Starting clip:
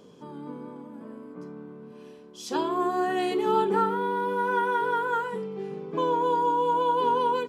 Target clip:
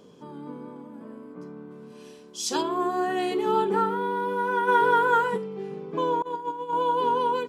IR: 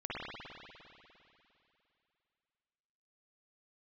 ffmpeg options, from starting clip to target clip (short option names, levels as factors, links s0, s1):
-filter_complex "[0:a]asplit=3[s0][s1][s2];[s0]afade=t=out:st=1.7:d=0.02[s3];[s1]equalizer=f=7400:w=0.48:g=12,afade=t=in:st=1.7:d=0.02,afade=t=out:st=2.61:d=0.02[s4];[s2]afade=t=in:st=2.61:d=0.02[s5];[s3][s4][s5]amix=inputs=3:normalize=0,asplit=3[s6][s7][s8];[s6]afade=t=out:st=4.67:d=0.02[s9];[s7]acontrast=54,afade=t=in:st=4.67:d=0.02,afade=t=out:st=5.36:d=0.02[s10];[s8]afade=t=in:st=5.36:d=0.02[s11];[s9][s10][s11]amix=inputs=3:normalize=0,asettb=1/sr,asplit=3[s12][s13][s14];[s12]atrim=end=6.224[s15];[s13]atrim=start=6.22:end=6.73,asetpts=PTS-STARTPTS,afade=t=in:d=0.004:c=qsin,afade=t=out:st=0.506:d=0.004:c=qsin,agate=range=0.0708:threshold=0.0794:ratio=16:detection=peak[s16];[s14]atrim=start=6.726[s17];[s15][s16]acrossfade=d=0.004:c1=hsin:c2=qsin[s18];[s18][s17]acrossfade=d=0.004:c1=qsin:c2=hsin"